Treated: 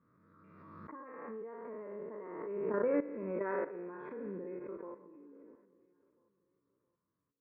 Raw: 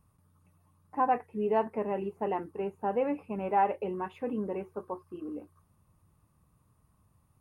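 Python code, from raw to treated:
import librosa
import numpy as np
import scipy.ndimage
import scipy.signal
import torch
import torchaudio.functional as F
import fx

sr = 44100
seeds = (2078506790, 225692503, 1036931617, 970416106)

y = fx.spec_trails(x, sr, decay_s=1.21)
y = fx.doppler_pass(y, sr, speed_mps=19, closest_m=17.0, pass_at_s=3.03)
y = scipy.signal.sosfilt(scipy.signal.butter(2, 360.0, 'highpass', fs=sr, output='sos'), y)
y = fx.high_shelf(y, sr, hz=2100.0, db=-11.5)
y = fx.level_steps(y, sr, step_db=15)
y = fx.air_absorb(y, sr, metres=440.0)
y = fx.fixed_phaser(y, sr, hz=2900.0, stages=6)
y = fx.echo_feedback(y, sr, ms=670, feedback_pct=41, wet_db=-23)
y = fx.pre_swell(y, sr, db_per_s=29.0)
y = F.gain(torch.from_numpy(y), 7.0).numpy()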